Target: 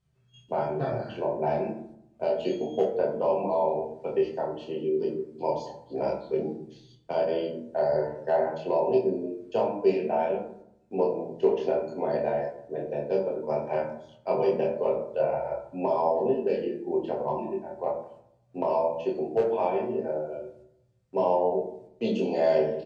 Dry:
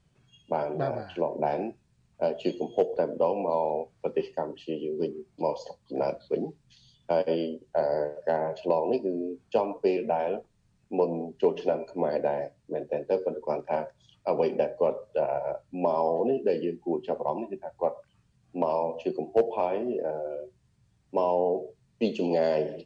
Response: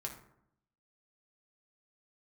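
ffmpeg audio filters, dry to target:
-filter_complex "[0:a]asplit=2[link_01][link_02];[link_02]adelay=26,volume=-2.5dB[link_03];[link_01][link_03]amix=inputs=2:normalize=0,agate=range=-8dB:threshold=-57dB:ratio=16:detection=peak[link_04];[1:a]atrim=start_sample=2205[link_05];[link_04][link_05]afir=irnorm=-1:irlink=0"

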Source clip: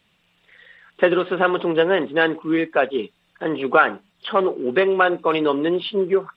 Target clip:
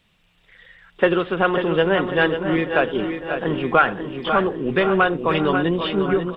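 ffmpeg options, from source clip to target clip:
ffmpeg -i in.wav -filter_complex "[0:a]lowshelf=frequency=72:gain=12,asplit=2[link_01][link_02];[link_02]adelay=523,lowpass=frequency=2000:poles=1,volume=-13dB,asplit=2[link_03][link_04];[link_04]adelay=523,lowpass=frequency=2000:poles=1,volume=0.54,asplit=2[link_05][link_06];[link_06]adelay=523,lowpass=frequency=2000:poles=1,volume=0.54,asplit=2[link_07][link_08];[link_08]adelay=523,lowpass=frequency=2000:poles=1,volume=0.54,asplit=2[link_09][link_10];[link_10]adelay=523,lowpass=frequency=2000:poles=1,volume=0.54,asplit=2[link_11][link_12];[link_12]adelay=523,lowpass=frequency=2000:poles=1,volume=0.54[link_13];[link_03][link_05][link_07][link_09][link_11][link_13]amix=inputs=6:normalize=0[link_14];[link_01][link_14]amix=inputs=2:normalize=0,asubboost=boost=5:cutoff=160,asplit=2[link_15][link_16];[link_16]aecho=0:1:545|1090|1635|2180|2725:0.398|0.187|0.0879|0.0413|0.0194[link_17];[link_15][link_17]amix=inputs=2:normalize=0" out.wav

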